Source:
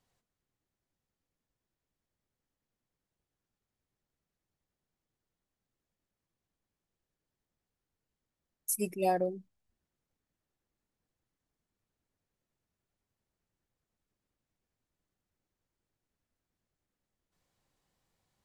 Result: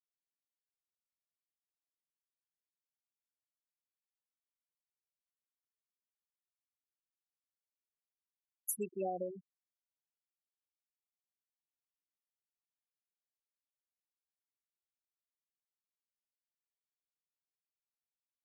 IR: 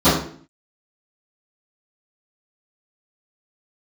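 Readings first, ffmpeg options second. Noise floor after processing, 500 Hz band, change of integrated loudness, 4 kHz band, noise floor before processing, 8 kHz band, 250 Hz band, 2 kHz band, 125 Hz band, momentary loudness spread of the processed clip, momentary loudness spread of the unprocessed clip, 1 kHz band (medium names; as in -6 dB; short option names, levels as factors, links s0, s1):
under -85 dBFS, -7.0 dB, -7.5 dB, under -20 dB, under -85 dBFS, -6.0 dB, -8.0 dB, -15.5 dB, -9.5 dB, 6 LU, 11 LU, -10.0 dB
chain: -filter_complex "[0:a]acrossover=split=270|5300[s0][s1][s2];[s0]acompressor=threshold=0.00251:ratio=4[s3];[s1]acompressor=threshold=0.0112:ratio=4[s4];[s2]acompressor=threshold=0.0158:ratio=4[s5];[s3][s4][s5]amix=inputs=3:normalize=0,afftfilt=real='re*gte(hypot(re,im),0.0251)':imag='im*gte(hypot(re,im),0.0251)':win_size=1024:overlap=0.75,volume=1.26"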